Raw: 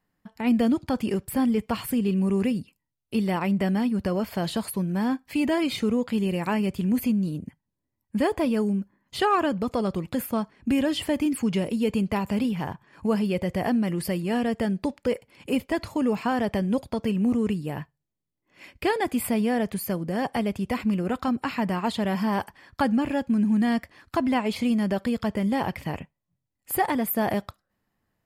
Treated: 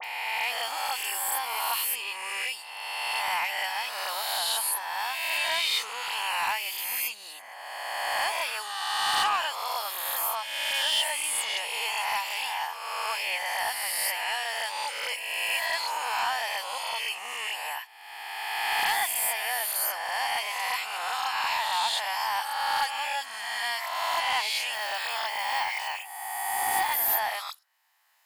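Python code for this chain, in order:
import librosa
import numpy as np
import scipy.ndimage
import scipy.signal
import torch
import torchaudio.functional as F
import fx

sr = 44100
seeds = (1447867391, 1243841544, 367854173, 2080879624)

y = fx.spec_swells(x, sr, rise_s=1.58)
y = scipy.signal.sosfilt(scipy.signal.cheby1(4, 1.0, 850.0, 'highpass', fs=sr, output='sos'), y)
y = fx.peak_eq(y, sr, hz=1300.0, db=-8.0, octaves=1.3)
y = 10.0 ** (-23.0 / 20.0) * np.tanh(y / 10.0 ** (-23.0 / 20.0))
y = fx.dispersion(y, sr, late='highs', ms=43.0, hz=2800.0)
y = fx.resample_bad(y, sr, factor=2, down='filtered', up='hold', at=(24.73, 26.94))
y = fx.band_squash(y, sr, depth_pct=40)
y = F.gain(torch.from_numpy(y), 6.0).numpy()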